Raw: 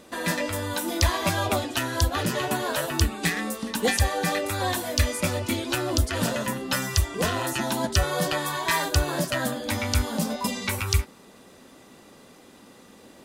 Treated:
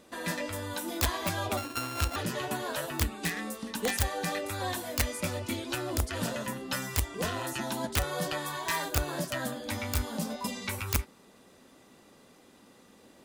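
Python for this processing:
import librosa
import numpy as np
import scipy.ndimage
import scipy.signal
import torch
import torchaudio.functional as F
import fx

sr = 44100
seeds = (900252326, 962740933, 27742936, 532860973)

y = fx.sample_sort(x, sr, block=32, at=(1.57, 2.16))
y = (np.mod(10.0 ** (12.0 / 20.0) * y + 1.0, 2.0) - 1.0) / 10.0 ** (12.0 / 20.0)
y = y * librosa.db_to_amplitude(-7.0)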